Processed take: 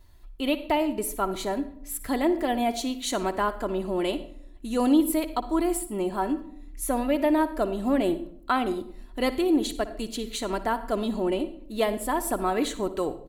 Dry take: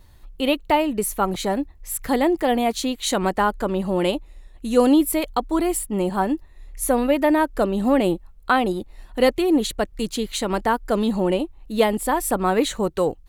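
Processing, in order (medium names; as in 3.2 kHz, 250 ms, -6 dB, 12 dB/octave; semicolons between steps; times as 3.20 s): comb 3 ms, depth 43%; reverberation RT60 0.65 s, pre-delay 58 ms, DRR 12.5 dB; trim -6.5 dB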